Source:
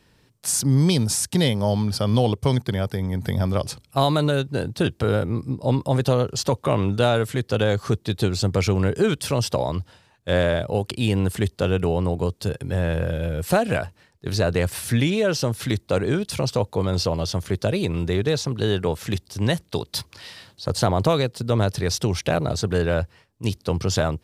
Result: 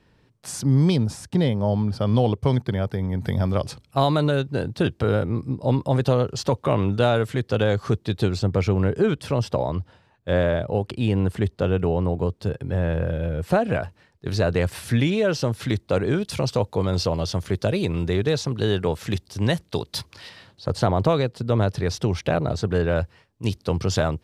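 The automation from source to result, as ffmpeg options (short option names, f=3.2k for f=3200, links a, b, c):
-af "asetnsamples=n=441:p=0,asendcmd='0.96 lowpass f 1100;2.01 lowpass f 2100;3.18 lowpass f 3600;8.39 lowpass f 1700;13.83 lowpass f 3800;16.17 lowpass f 6300;20.29 lowpass f 2500;22.96 lowpass f 5700',lowpass=f=2.2k:p=1"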